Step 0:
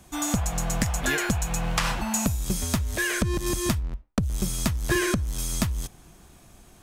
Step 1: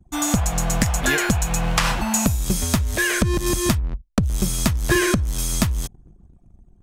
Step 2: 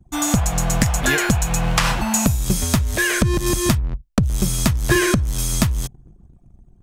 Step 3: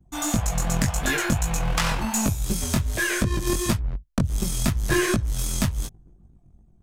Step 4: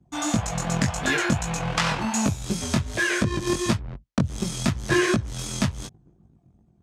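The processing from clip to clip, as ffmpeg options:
ffmpeg -i in.wav -af "anlmdn=0.0251,volume=5.5dB" out.wav
ffmpeg -i in.wav -af "equalizer=frequency=130:width=5.4:gain=5,volume=1.5dB" out.wav
ffmpeg -i in.wav -af "flanger=delay=18:depth=4.6:speed=2.7,aeval=exprs='0.376*(cos(1*acos(clip(val(0)/0.376,-1,1)))-cos(1*PI/2))+0.0841*(cos(2*acos(clip(val(0)/0.376,-1,1)))-cos(2*PI/2))':channel_layout=same,volume=-2.5dB" out.wav
ffmpeg -i in.wav -af "highpass=100,lowpass=6500,volume=1.5dB" out.wav

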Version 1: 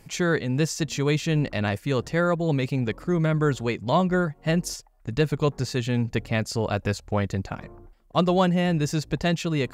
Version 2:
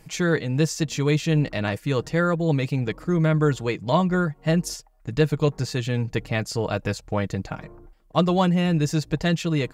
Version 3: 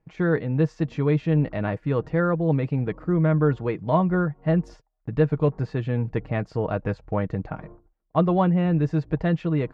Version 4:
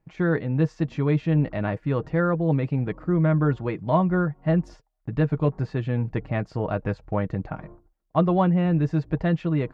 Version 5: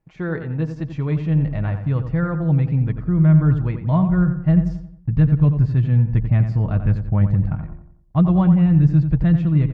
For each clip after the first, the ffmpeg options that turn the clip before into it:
ffmpeg -i in.wav -af "aecho=1:1:6.4:0.38" out.wav
ffmpeg -i in.wav -af "lowpass=1500,agate=range=-18dB:threshold=-43dB:ratio=16:detection=peak" out.wav
ffmpeg -i in.wav -af "bandreject=frequency=460:width=12" out.wav
ffmpeg -i in.wav -filter_complex "[0:a]asplit=2[link_01][link_02];[link_02]adelay=89,lowpass=frequency=2500:poles=1,volume=-8.5dB,asplit=2[link_03][link_04];[link_04]adelay=89,lowpass=frequency=2500:poles=1,volume=0.44,asplit=2[link_05][link_06];[link_06]adelay=89,lowpass=frequency=2500:poles=1,volume=0.44,asplit=2[link_07][link_08];[link_08]adelay=89,lowpass=frequency=2500:poles=1,volume=0.44,asplit=2[link_09][link_10];[link_10]adelay=89,lowpass=frequency=2500:poles=1,volume=0.44[link_11];[link_03][link_05][link_07][link_09][link_11]amix=inputs=5:normalize=0[link_12];[link_01][link_12]amix=inputs=2:normalize=0,asubboost=boost=9.5:cutoff=140,volume=-2.5dB" out.wav

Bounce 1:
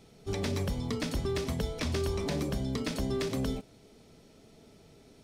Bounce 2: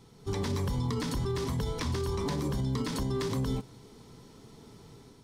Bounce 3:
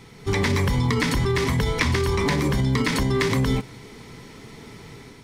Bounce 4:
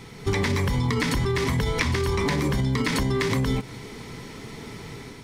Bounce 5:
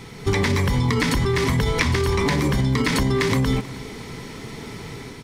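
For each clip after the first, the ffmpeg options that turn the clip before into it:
ffmpeg -i in.wav -af "equalizer=frequency=125:width_type=o:width=0.33:gain=7,equalizer=frequency=630:width_type=o:width=0.33:gain=-10,equalizer=frequency=1000:width_type=o:width=0.33:gain=10,equalizer=frequency=2500:width_type=o:width=0.33:gain=-6,dynaudnorm=framelen=110:gausssize=5:maxgain=4.5dB,alimiter=limit=-23.5dB:level=0:latency=1:release=41" out.wav
ffmpeg -i in.wav -af "equalizer=frequency=2100:width_type=o:width=0.75:gain=12.5,volume=9dB" out.wav
ffmpeg -i in.wav -af "acompressor=threshold=-24dB:ratio=6,volume=3.5dB" out.wav
ffmpeg -i in.wav -af "aecho=1:1:317:0.126,volume=3.5dB" out.wav

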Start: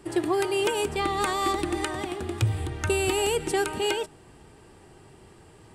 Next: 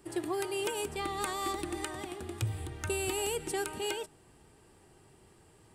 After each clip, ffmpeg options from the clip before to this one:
ffmpeg -i in.wav -af "highshelf=frequency=8500:gain=10,volume=-9dB" out.wav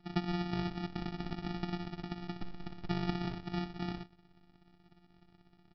ffmpeg -i in.wav -af "afftfilt=real='hypot(re,im)*cos(PI*b)':imag='0':win_size=512:overlap=0.75,aresample=11025,acrusher=samples=21:mix=1:aa=0.000001,aresample=44100,volume=1dB" out.wav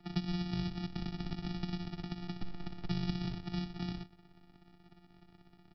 ffmpeg -i in.wav -filter_complex "[0:a]acrossover=split=210|3000[link_01][link_02][link_03];[link_02]acompressor=threshold=-50dB:ratio=4[link_04];[link_01][link_04][link_03]amix=inputs=3:normalize=0,volume=3dB" out.wav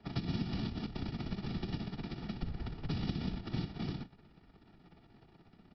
ffmpeg -i in.wav -filter_complex "[0:a]afftfilt=real='hypot(re,im)*cos(2*PI*random(0))':imag='hypot(re,im)*sin(2*PI*random(1))':win_size=512:overlap=0.75,acrossover=split=230|3000[link_01][link_02][link_03];[link_02]acompressor=threshold=-46dB:ratio=6[link_04];[link_01][link_04][link_03]amix=inputs=3:normalize=0,lowpass=5200,volume=6.5dB" out.wav

